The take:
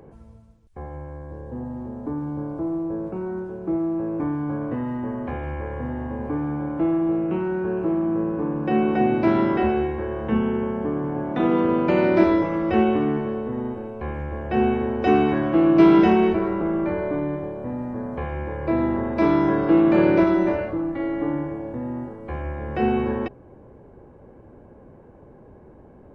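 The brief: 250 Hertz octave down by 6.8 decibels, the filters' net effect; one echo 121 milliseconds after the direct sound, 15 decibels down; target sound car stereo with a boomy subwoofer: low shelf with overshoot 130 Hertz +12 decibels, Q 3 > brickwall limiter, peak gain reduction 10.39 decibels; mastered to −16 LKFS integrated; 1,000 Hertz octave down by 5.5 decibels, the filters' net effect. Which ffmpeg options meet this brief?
ffmpeg -i in.wav -af "lowshelf=frequency=130:width_type=q:width=3:gain=12,equalizer=frequency=250:width_type=o:gain=-5.5,equalizer=frequency=1000:width_type=o:gain=-7,aecho=1:1:121:0.178,volume=9.5dB,alimiter=limit=-6.5dB:level=0:latency=1" out.wav

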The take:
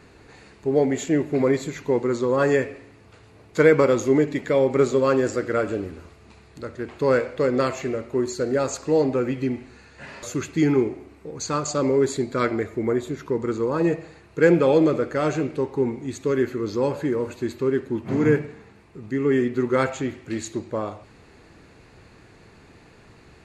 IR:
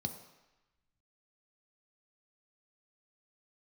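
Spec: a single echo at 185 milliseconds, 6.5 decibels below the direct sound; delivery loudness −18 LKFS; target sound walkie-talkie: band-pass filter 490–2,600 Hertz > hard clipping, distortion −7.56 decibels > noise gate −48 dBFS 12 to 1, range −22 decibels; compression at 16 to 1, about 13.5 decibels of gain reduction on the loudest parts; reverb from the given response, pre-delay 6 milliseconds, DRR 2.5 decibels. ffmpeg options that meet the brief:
-filter_complex "[0:a]acompressor=threshold=-24dB:ratio=16,aecho=1:1:185:0.473,asplit=2[link_01][link_02];[1:a]atrim=start_sample=2205,adelay=6[link_03];[link_02][link_03]afir=irnorm=-1:irlink=0,volume=-2.5dB[link_04];[link_01][link_04]amix=inputs=2:normalize=0,highpass=490,lowpass=2600,asoftclip=type=hard:threshold=-30.5dB,agate=range=-22dB:threshold=-48dB:ratio=12,volume=17dB"

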